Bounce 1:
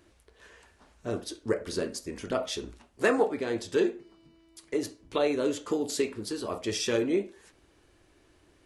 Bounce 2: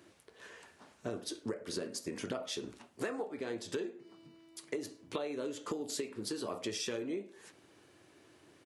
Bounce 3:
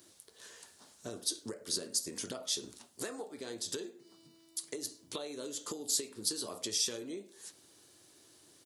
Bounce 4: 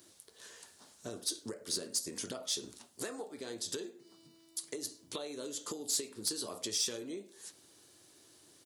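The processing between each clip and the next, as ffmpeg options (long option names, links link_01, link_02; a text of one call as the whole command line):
ffmpeg -i in.wav -filter_complex "[0:a]highpass=frequency=110:width=0.5412,highpass=frequency=110:width=1.3066,acompressor=threshold=-36dB:ratio=12,asplit=2[link_01][link_02];[link_02]adelay=105,volume=-29dB,highshelf=frequency=4000:gain=-2.36[link_03];[link_01][link_03]amix=inputs=2:normalize=0,volume=1.5dB" out.wav
ffmpeg -i in.wav -af "aexciter=amount=4.1:drive=6.3:freq=3500,volume=-4.5dB" out.wav
ffmpeg -i in.wav -af "asoftclip=type=tanh:threshold=-22.5dB" out.wav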